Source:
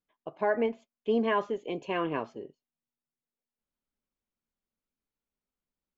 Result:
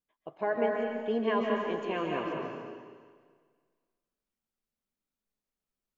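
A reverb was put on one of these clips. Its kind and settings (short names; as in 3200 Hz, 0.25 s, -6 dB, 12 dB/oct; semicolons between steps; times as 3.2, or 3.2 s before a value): digital reverb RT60 1.7 s, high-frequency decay 1×, pre-delay 0.105 s, DRR -0.5 dB; gain -3.5 dB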